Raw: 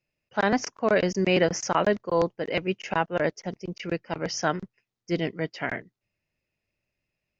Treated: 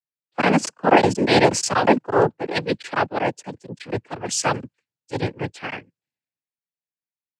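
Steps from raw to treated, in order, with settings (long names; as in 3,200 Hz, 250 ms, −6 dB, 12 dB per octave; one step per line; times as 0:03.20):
cochlear-implant simulation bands 8
multiband upward and downward expander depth 70%
level +5 dB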